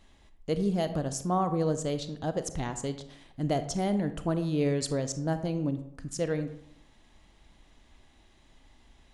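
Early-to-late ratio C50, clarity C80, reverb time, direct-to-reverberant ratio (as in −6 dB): 11.5 dB, 14.0 dB, 0.75 s, 10.0 dB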